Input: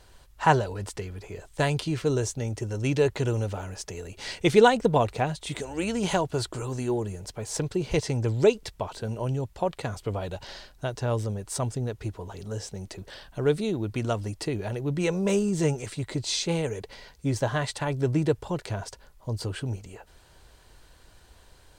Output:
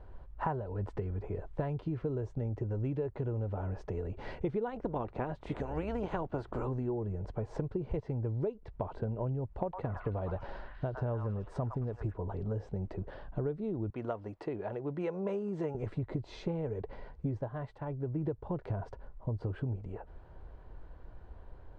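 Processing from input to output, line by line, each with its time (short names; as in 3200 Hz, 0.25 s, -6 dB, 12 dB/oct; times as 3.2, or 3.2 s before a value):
4.67–6.67 spectral limiter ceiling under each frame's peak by 14 dB
9.62–12.14 delay with a stepping band-pass 0.108 s, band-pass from 1300 Hz, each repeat 0.7 oct, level -0.5 dB
13.9–15.75 HPF 720 Hz 6 dB/oct
17.36–18.28 dip -11.5 dB, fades 0.13 s
whole clip: LPF 1000 Hz 12 dB/oct; low shelf 63 Hz +6.5 dB; compressor 12:1, threshold -33 dBFS; gain +2 dB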